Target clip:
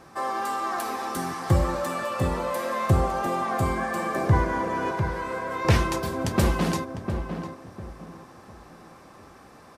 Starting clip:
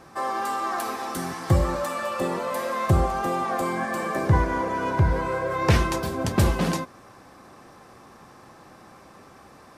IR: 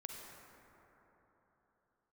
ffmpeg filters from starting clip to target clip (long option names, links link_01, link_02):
-filter_complex "[0:a]asettb=1/sr,asplit=3[link_01][link_02][link_03];[link_01]atrim=end=4.914[link_04];[link_02]atrim=start=4.91:end=5.65,asetpts=PTS-STARTPTS,afade=type=in:duration=0.004:curve=qsin,afade=type=out:start_time=0.736:duration=0.004:curve=qsin,highpass=frequency=1000:poles=1[link_05];[link_03]atrim=start=5.646[link_06];[link_04][link_05]acrossfade=duration=0.004:curve1=hsin:curve2=qsin[link_07];[link_07][link_06]acrossfade=duration=0.004:curve1=qsin:curve2=hsin,asplit=2[link_08][link_09];[link_09]adelay=702,lowpass=frequency=1400:poles=1,volume=-7dB,asplit=2[link_10][link_11];[link_11]adelay=702,lowpass=frequency=1400:poles=1,volume=0.31,asplit=2[link_12][link_13];[link_13]adelay=702,lowpass=frequency=1400:poles=1,volume=0.31,asplit=2[link_14][link_15];[link_15]adelay=702,lowpass=frequency=1400:poles=1,volume=0.31[link_16];[link_08][link_10][link_12][link_14][link_16]amix=inputs=5:normalize=0,volume=-1dB"